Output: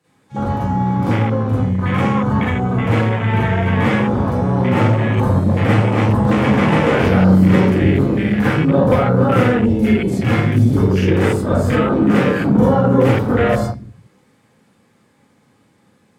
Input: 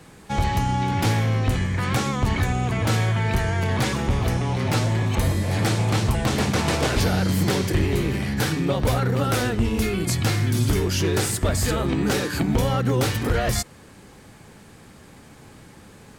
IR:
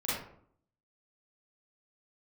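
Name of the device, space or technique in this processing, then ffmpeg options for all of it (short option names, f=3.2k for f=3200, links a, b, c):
far laptop microphone: -filter_complex "[1:a]atrim=start_sample=2205[a];[0:a][a]afir=irnorm=-1:irlink=0,highpass=120,dynaudnorm=f=950:g=7:m=13.5dB,afwtdn=0.0794"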